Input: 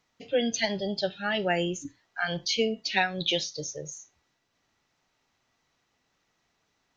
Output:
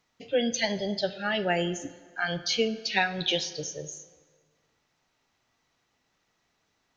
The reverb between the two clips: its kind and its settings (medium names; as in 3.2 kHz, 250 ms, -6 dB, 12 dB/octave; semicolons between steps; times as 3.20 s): plate-style reverb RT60 1.7 s, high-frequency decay 0.7×, DRR 13 dB